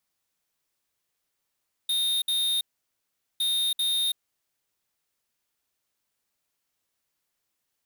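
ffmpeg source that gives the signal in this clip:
ffmpeg -f lavfi -i "aevalsrc='0.0531*(2*lt(mod(3690*t,1),0.5)-1)*clip(min(mod(mod(t,1.51),0.39),0.33-mod(mod(t,1.51),0.39))/0.005,0,1)*lt(mod(t,1.51),0.78)':duration=3.02:sample_rate=44100" out.wav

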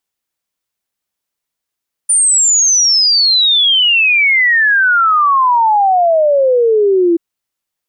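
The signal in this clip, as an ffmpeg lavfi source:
ffmpeg -f lavfi -i "aevalsrc='0.422*clip(min(t,5.08-t)/0.01,0,1)*sin(2*PI*9300*5.08/log(330/9300)*(exp(log(330/9300)*t/5.08)-1))':duration=5.08:sample_rate=44100" out.wav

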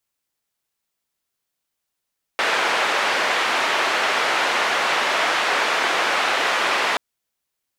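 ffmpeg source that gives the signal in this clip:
ffmpeg -f lavfi -i "anoisesrc=color=white:duration=4.58:sample_rate=44100:seed=1,highpass=frequency=510,lowpass=frequency=2100,volume=-4.7dB" out.wav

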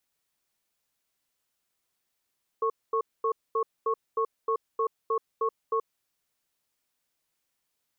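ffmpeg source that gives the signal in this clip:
ffmpeg -f lavfi -i "aevalsrc='0.0501*(sin(2*PI*450*t)+sin(2*PI*1100*t))*clip(min(mod(t,0.31),0.08-mod(t,0.31))/0.005,0,1)':duration=3.31:sample_rate=44100" out.wav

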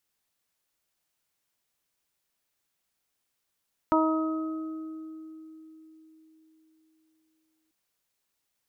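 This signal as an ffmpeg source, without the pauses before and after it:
ffmpeg -f lavfi -i "aevalsrc='0.0794*pow(10,-3*t/4.26)*sin(2*PI*317*t)+0.0562*pow(10,-3*t/1.68)*sin(2*PI*634*t)+0.0708*pow(10,-3*t/0.78)*sin(2*PI*951*t)+0.0562*pow(10,-3*t/2.02)*sin(2*PI*1268*t)':duration=3.79:sample_rate=44100" out.wav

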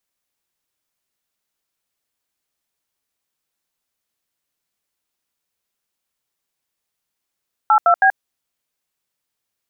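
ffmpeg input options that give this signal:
ffmpeg -f lavfi -i "aevalsrc='0.251*clip(min(mod(t,0.16),0.081-mod(t,0.16))/0.002,0,1)*(eq(floor(t/0.16),0)*(sin(2*PI*852*mod(t,0.16))+sin(2*PI*1336*mod(t,0.16)))+eq(floor(t/0.16),1)*(sin(2*PI*697*mod(t,0.16))+sin(2*PI*1336*mod(t,0.16)))+eq(floor(t/0.16),2)*(sin(2*PI*770*mod(t,0.16))+sin(2*PI*1633*mod(t,0.16))))':duration=0.48:sample_rate=44100" out.wav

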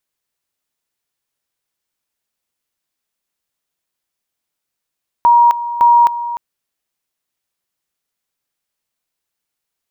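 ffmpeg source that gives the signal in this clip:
ffmpeg -f lavfi -i "aevalsrc='pow(10,(-5.5-13.5*gte(mod(t,0.56),0.26))/20)*sin(2*PI*949*t)':duration=1.12:sample_rate=44100" out.wav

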